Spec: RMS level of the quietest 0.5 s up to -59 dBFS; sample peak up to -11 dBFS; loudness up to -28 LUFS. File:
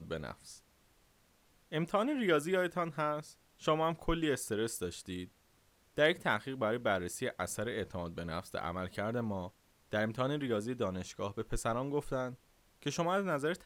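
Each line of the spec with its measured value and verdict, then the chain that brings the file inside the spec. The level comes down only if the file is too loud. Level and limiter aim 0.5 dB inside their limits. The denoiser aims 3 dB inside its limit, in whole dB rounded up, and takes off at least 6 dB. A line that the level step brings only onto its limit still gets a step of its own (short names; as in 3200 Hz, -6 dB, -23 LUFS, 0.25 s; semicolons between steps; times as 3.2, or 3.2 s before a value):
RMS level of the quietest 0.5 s -69 dBFS: OK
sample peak -16.5 dBFS: OK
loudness -35.5 LUFS: OK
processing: none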